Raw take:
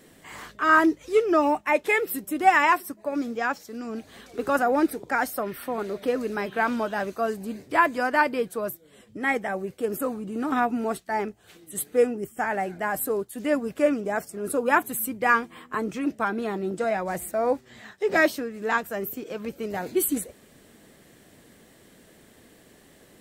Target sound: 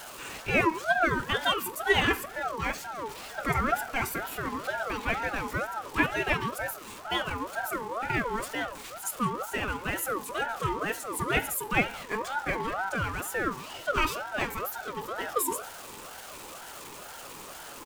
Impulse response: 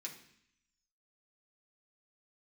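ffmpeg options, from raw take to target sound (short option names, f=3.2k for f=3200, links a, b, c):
-filter_complex "[0:a]aeval=exprs='val(0)+0.5*0.0211*sgn(val(0))':c=same,atempo=1.3,asplit=2[a][b];[1:a]atrim=start_sample=2205,afade=t=out:st=0.23:d=0.01,atrim=end_sample=10584[c];[b][c]afir=irnorm=-1:irlink=0,volume=1dB[d];[a][d]amix=inputs=2:normalize=0,aeval=exprs='val(0)*sin(2*PI*900*n/s+900*0.3/2.1*sin(2*PI*2.1*n/s))':c=same,volume=-5.5dB"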